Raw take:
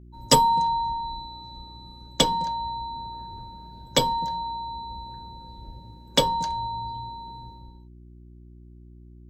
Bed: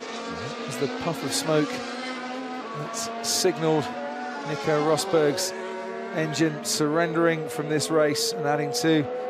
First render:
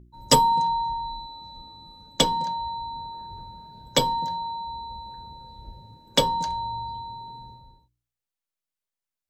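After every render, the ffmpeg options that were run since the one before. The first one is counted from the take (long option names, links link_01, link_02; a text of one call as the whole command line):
ffmpeg -i in.wav -af "bandreject=frequency=60:width_type=h:width=4,bandreject=frequency=120:width_type=h:width=4,bandreject=frequency=180:width_type=h:width=4,bandreject=frequency=240:width_type=h:width=4,bandreject=frequency=300:width_type=h:width=4,bandreject=frequency=360:width_type=h:width=4" out.wav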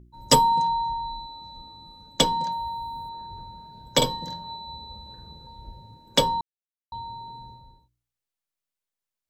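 ffmpeg -i in.wav -filter_complex "[0:a]asettb=1/sr,asplit=3[link_01][link_02][link_03];[link_01]atrim=end=2.524[link_04];[link_02]atrim=start=2.52:end=3.09,asetpts=PTS-STARTPTS,afade=type=in:duration=0.004:curve=qsin,afade=type=out:start_time=0.566:duration=0.004:curve=qsin,highshelf=frequency=7200:width_type=q:width=1.5:gain=13.5[link_05];[link_03]atrim=start=3.086[link_06];[link_04][link_05]acrossfade=duration=0.004:curve1=hsin:curve2=qsin[link_07];[link_07][link_06]acrossfade=duration=0.004:curve1=qsin:curve2=hsin,asettb=1/sr,asplit=3[link_08][link_09][link_10];[link_08]atrim=end=3.974[link_11];[link_09]atrim=start=3.97:end=5.47,asetpts=PTS-STARTPTS,afade=type=in:duration=0.004:curve=qsin,afade=type=out:start_time=1.496:duration=0.004:curve=qsin,asplit=2[link_12][link_13];[link_13]adelay=47,volume=-4dB[link_14];[link_12][link_14]amix=inputs=2:normalize=0,atrim=end_sample=66150[link_15];[link_10]atrim=start=5.466[link_16];[link_11][link_15]acrossfade=duration=0.004:curve1=hsin:curve2=qsin[link_17];[link_17][link_16]acrossfade=duration=0.004:curve1=qsin:curve2=hsin,asplit=3[link_18][link_19][link_20];[link_18]atrim=end=6.41,asetpts=PTS-STARTPTS,afade=type=out:start_time=6.406:duration=0.004:curve=hsin[link_21];[link_19]atrim=start=6.41:end=6.92,asetpts=PTS-STARTPTS,volume=0[link_22];[link_20]atrim=start=6.92,asetpts=PTS-STARTPTS,afade=type=in:duration=0.004:curve=hsin[link_23];[link_21][link_22][link_23]concat=n=3:v=0:a=1" out.wav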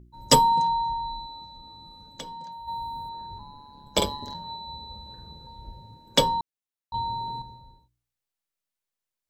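ffmpeg -i in.wav -filter_complex "[0:a]asplit=3[link_01][link_02][link_03];[link_01]afade=type=out:start_time=1.44:duration=0.02[link_04];[link_02]acompressor=threshold=-42dB:ratio=3:attack=3.2:release=140:knee=1:detection=peak,afade=type=in:start_time=1.44:duration=0.02,afade=type=out:start_time=2.67:duration=0.02[link_05];[link_03]afade=type=in:start_time=2.67:duration=0.02[link_06];[link_04][link_05][link_06]amix=inputs=3:normalize=0,asplit=3[link_07][link_08][link_09];[link_07]afade=type=out:start_time=3.38:duration=0.02[link_10];[link_08]aeval=exprs='val(0)*sin(2*PI*72*n/s)':channel_layout=same,afade=type=in:start_time=3.38:duration=0.02,afade=type=out:start_time=4.33:duration=0.02[link_11];[link_09]afade=type=in:start_time=4.33:duration=0.02[link_12];[link_10][link_11][link_12]amix=inputs=3:normalize=0,asettb=1/sr,asplit=3[link_13][link_14][link_15];[link_13]atrim=end=6.944[link_16];[link_14]atrim=start=6.94:end=7.42,asetpts=PTS-STARTPTS,afade=type=in:duration=0.004:curve=qsin,afade=type=out:start_time=0.476:duration=0.004:curve=qsin,acontrast=85[link_17];[link_15]atrim=start=7.416[link_18];[link_16][link_17]acrossfade=duration=0.004:curve1=hsin:curve2=qsin[link_19];[link_19][link_18]acrossfade=duration=0.004:curve1=qsin:curve2=hsin" out.wav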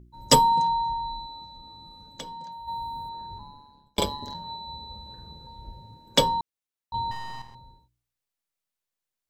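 ffmpeg -i in.wav -filter_complex "[0:a]asettb=1/sr,asplit=3[link_01][link_02][link_03];[link_01]atrim=end=7.114[link_04];[link_02]atrim=start=7.11:end=7.55,asetpts=PTS-STARTPTS,afade=type=in:duration=0.004:curve=qsin,afade=type=out:start_time=0.436:duration=0.004:curve=qsin,aeval=exprs='max(val(0),0)':channel_layout=same[link_05];[link_03]atrim=start=7.546[link_06];[link_04][link_05]acrossfade=duration=0.004:curve1=hsin:curve2=qsin[link_07];[link_07][link_06]acrossfade=duration=0.004:curve1=qsin:curve2=hsin,asplit=2[link_08][link_09];[link_08]atrim=end=3.98,asetpts=PTS-STARTPTS,afade=type=out:start_time=3.45:duration=0.53[link_10];[link_09]atrim=start=3.98,asetpts=PTS-STARTPTS,afade=type=in:duration=0.004:curve=hsin[link_11];[link_10][link_11]concat=n=2:v=0:a=1" out.wav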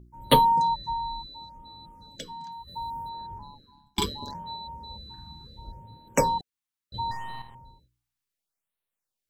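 ffmpeg -i in.wav -af "afftfilt=real='re*(1-between(b*sr/1024,460*pow(6400/460,0.5+0.5*sin(2*PI*0.71*pts/sr))/1.41,460*pow(6400/460,0.5+0.5*sin(2*PI*0.71*pts/sr))*1.41))':imag='im*(1-between(b*sr/1024,460*pow(6400/460,0.5+0.5*sin(2*PI*0.71*pts/sr))/1.41,460*pow(6400/460,0.5+0.5*sin(2*PI*0.71*pts/sr))*1.41))':win_size=1024:overlap=0.75" out.wav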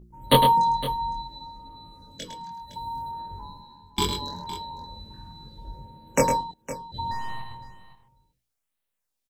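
ffmpeg -i in.wav -filter_complex "[0:a]asplit=2[link_01][link_02];[link_02]adelay=22,volume=-2dB[link_03];[link_01][link_03]amix=inputs=2:normalize=0,aecho=1:1:106|511:0.422|0.2" out.wav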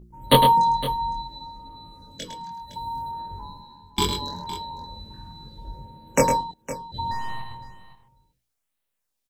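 ffmpeg -i in.wav -af "volume=2dB,alimiter=limit=-3dB:level=0:latency=1" out.wav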